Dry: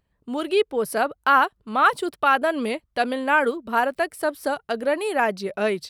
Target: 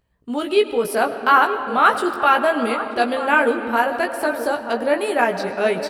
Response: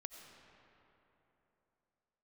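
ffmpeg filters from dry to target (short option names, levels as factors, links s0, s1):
-filter_complex "[0:a]asplit=2[s0][s1];[s1]adelay=932.9,volume=0.282,highshelf=f=4000:g=-21[s2];[s0][s2]amix=inputs=2:normalize=0,asplit=2[s3][s4];[1:a]atrim=start_sample=2205,adelay=17[s5];[s4][s5]afir=irnorm=-1:irlink=0,volume=1.19[s6];[s3][s6]amix=inputs=2:normalize=0,volume=1.19"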